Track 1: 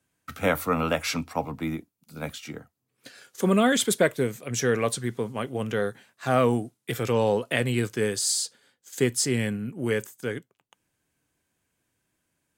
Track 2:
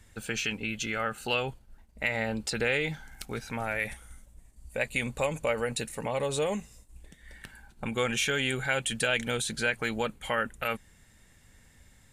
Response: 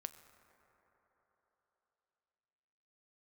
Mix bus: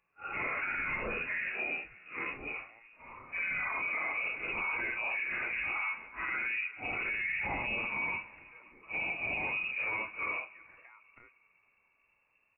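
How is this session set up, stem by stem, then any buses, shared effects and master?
-1.0 dB, 0.00 s, send -5 dB, phase randomisation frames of 200 ms; bass shelf 340 Hz -6.5 dB; compression, threshold -25 dBFS, peak gain reduction 7.5 dB
-19.5 dB, 0.55 s, no send, spectral gate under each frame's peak -20 dB strong; compression 4:1, threshold -37 dBFS, peak gain reduction 12 dB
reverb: on, RT60 4.0 s, pre-delay 6 ms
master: frequency inversion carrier 2.7 kHz; peak limiter -26.5 dBFS, peak gain reduction 12 dB

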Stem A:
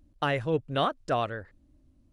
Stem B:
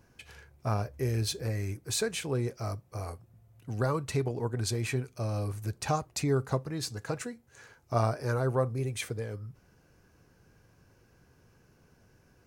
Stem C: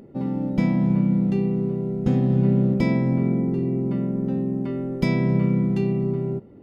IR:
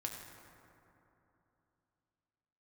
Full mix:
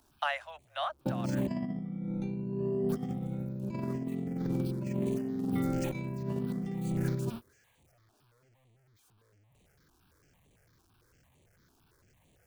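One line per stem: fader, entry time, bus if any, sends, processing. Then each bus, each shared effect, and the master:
-1.0 dB, 0.00 s, no bus, no send, steep high-pass 590 Hz 96 dB/octave; auto duck -9 dB, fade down 0.60 s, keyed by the second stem
-10.0 dB, 0.00 s, muted 1.47–2.89 s, bus A, no send, one-bit comparator; stepped phaser 8.9 Hz 540–5200 Hz
-8.5 dB, 0.90 s, bus A, no send, drifting ripple filter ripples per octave 1.4, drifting +0.83 Hz, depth 23 dB
bus A: 0.0 dB, gate -39 dBFS, range -25 dB; compression 3:1, threshold -26 dBFS, peak gain reduction 6.5 dB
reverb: none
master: compressor with a negative ratio -32 dBFS, ratio -0.5

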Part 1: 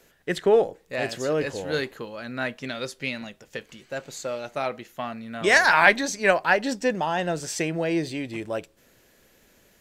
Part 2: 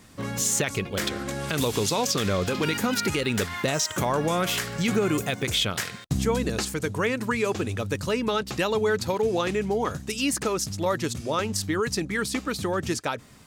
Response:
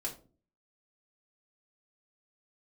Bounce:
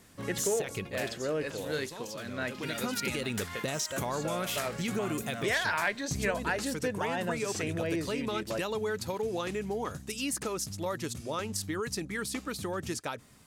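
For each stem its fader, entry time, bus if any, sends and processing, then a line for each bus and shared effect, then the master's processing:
-5.5 dB, 0.00 s, no send, band-stop 800 Hz, Q 12
0.86 s -7.5 dB -> 1.18 s -19.5 dB -> 2.34 s -19.5 dB -> 2.87 s -7.5 dB, 0.00 s, no send, peaking EQ 11 kHz +5.5 dB 0.84 oct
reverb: none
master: compression 3:1, threshold -28 dBFS, peak gain reduction 9 dB

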